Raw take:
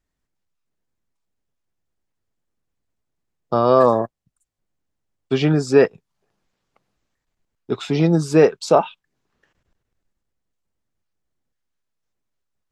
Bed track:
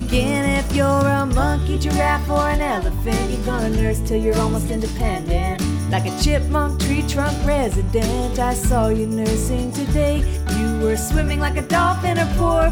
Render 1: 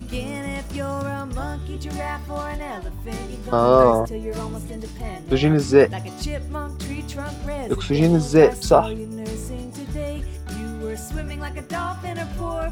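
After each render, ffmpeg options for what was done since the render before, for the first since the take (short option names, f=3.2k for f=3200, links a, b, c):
-filter_complex "[1:a]volume=-10.5dB[a];[0:a][a]amix=inputs=2:normalize=0"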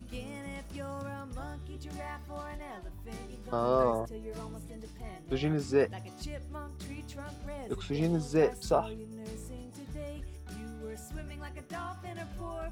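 -af "volume=-13dB"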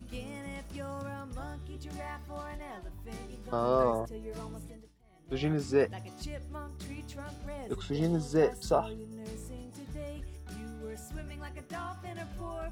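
-filter_complex "[0:a]asettb=1/sr,asplit=3[a][b][c];[a]atrim=end=7.764[d];[b]atrim=start=7.76:end=9.18,asetpts=PTS-STARTPTS,afade=t=in:d=0.004:c=qsin,afade=t=out:st=1.416:d=0.004:c=qsin,asuperstop=centerf=2400:order=12:qfactor=6.1[e];[c]atrim=start=9.176[f];[d][e]acrossfade=d=0.004:c1=hsin:c2=qsin[g];[g][f]acrossfade=d=0.004:c1=qsin:c2=hsin,asplit=2[h][i];[h]atrim=end=5.03,asetpts=PTS-STARTPTS,afade=t=out:st=4.66:d=0.37:c=qua:silence=0.0794328[j];[i]atrim=start=5.03,asetpts=PTS-STARTPTS,afade=t=in:d=0.37:c=qua:silence=0.0794328[k];[j][k]concat=n=2:v=0:a=1"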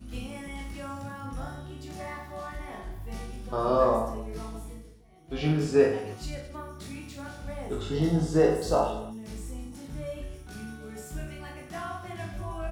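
-filter_complex "[0:a]asplit=2[a][b];[b]adelay=19,volume=-3dB[c];[a][c]amix=inputs=2:normalize=0,aecho=1:1:40|88|145.6|214.7|297.7:0.631|0.398|0.251|0.158|0.1"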